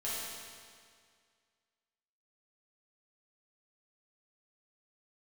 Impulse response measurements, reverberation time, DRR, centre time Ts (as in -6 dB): 2.0 s, -9.5 dB, 0.136 s